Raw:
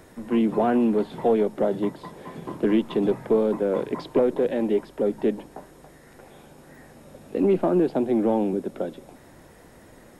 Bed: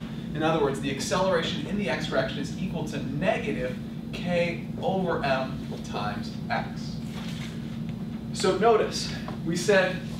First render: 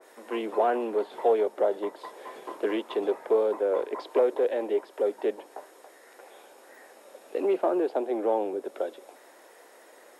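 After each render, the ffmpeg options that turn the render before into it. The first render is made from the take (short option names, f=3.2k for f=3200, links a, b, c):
-af "highpass=f=410:w=0.5412,highpass=f=410:w=1.3066,adynamicequalizer=threshold=0.00891:dfrequency=1600:dqfactor=0.7:tfrequency=1600:tqfactor=0.7:attack=5:release=100:ratio=0.375:range=3:mode=cutabove:tftype=highshelf"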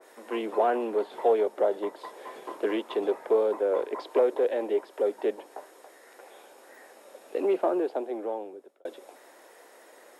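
-filter_complex "[0:a]asplit=2[a][b];[a]atrim=end=8.85,asetpts=PTS-STARTPTS,afade=t=out:st=7.63:d=1.22[c];[b]atrim=start=8.85,asetpts=PTS-STARTPTS,afade=t=in:d=0.004:c=hsin[d];[c][d]concat=n=2:v=0:a=1"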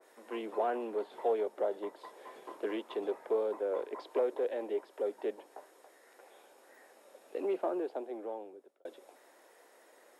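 -af "volume=-8dB"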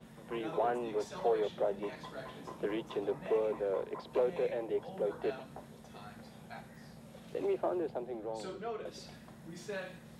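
-filter_complex "[1:a]volume=-20dB[a];[0:a][a]amix=inputs=2:normalize=0"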